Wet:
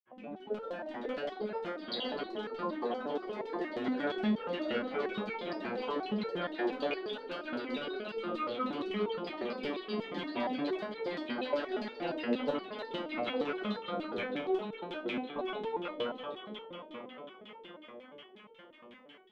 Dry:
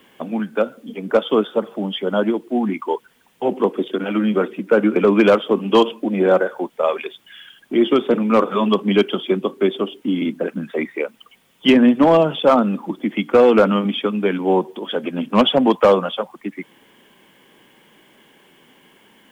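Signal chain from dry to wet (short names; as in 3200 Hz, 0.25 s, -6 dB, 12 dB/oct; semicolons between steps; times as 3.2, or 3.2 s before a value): high shelf 2100 Hz +11 dB; transient shaper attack -7 dB, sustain -11 dB; compressor 6:1, threshold -22 dBFS, peak gain reduction 12.5 dB; diffused feedback echo 0.467 s, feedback 70%, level -7 dB; grains; one-sided clip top -19.5 dBFS; LFO low-pass saw down 5.5 Hz 330–3400 Hz; echoes that change speed 0.251 s, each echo +3 st, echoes 2; stepped resonator 8.5 Hz 120–450 Hz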